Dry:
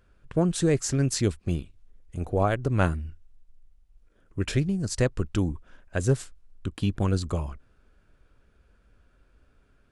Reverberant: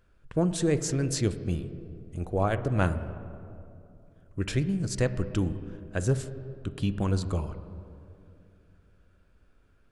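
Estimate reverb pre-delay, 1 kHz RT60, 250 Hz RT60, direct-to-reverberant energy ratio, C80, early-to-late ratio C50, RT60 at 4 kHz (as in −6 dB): 6 ms, 2.4 s, 3.2 s, 11.0 dB, 13.5 dB, 12.5 dB, 1.4 s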